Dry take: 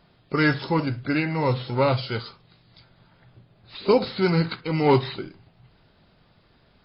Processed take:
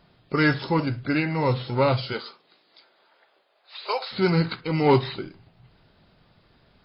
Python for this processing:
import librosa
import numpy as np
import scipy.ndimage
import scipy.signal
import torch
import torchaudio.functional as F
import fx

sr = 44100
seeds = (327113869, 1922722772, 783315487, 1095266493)

y = fx.highpass(x, sr, hz=fx.line((2.12, 220.0), (4.11, 730.0)), slope=24, at=(2.12, 4.11), fade=0.02)